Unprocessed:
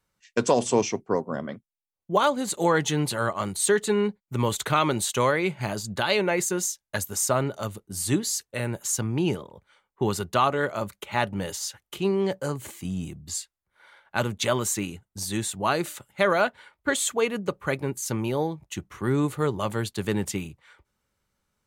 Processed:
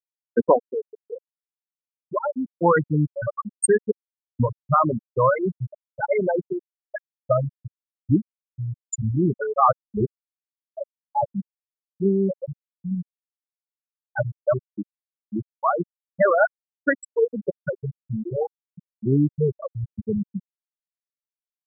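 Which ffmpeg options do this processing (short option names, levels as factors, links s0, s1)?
-filter_complex "[0:a]asettb=1/sr,asplit=3[s0][s1][s2];[s0]atrim=end=0.564[s3];[s1]atrim=start=0.56:end=2.33,asetpts=PTS-STARTPTS,afade=t=in:d=0.004:c=qsin,afade=t=out:st=1.766:d=0.004:c=qsin,acompressor=threshold=0.0501:ratio=2:attack=3.2:release=140:knee=1:detection=peak[s4];[s2]atrim=start=2.326[s5];[s3][s4]acrossfade=d=0.004:c1=hsin:c2=qsin[s6];[s6][s5]acrossfade=d=0.004:c1=qsin:c2=hsin,asettb=1/sr,asplit=3[s7][s8][s9];[s7]atrim=end=3.914[s10];[s8]atrim=start=3.91:end=4.4,asetpts=PTS-STARTPTS,afade=t=in:d=0.004:c=qsin,afade=t=out:st=0.486:d=0.004:c=qsin,aderivative[s11];[s9]atrim=start=4.396[s12];[s10][s11]acrossfade=d=0.004:c1=hsin:c2=qsin[s13];[s13][s12]acrossfade=d=0.004:c1=qsin:c2=hsin,asplit=3[s14][s15][s16];[s14]atrim=end=9.392[s17];[s15]atrim=start=9.388:end=10.682,asetpts=PTS-STARTPTS,areverse[s18];[s16]atrim=start=10.678[s19];[s17][s18]acrossfade=d=0.004:c1=hsin:c2=hsin[s20];[s20][s19]acrossfade=d=0.004:c1=hsin:c2=hsin,equalizer=f=380:w=2.5:g=-3,afftfilt=real='re*gte(hypot(re,im),0.316)':imag='im*gte(hypot(re,im),0.316)':win_size=1024:overlap=0.75,volume=2.11"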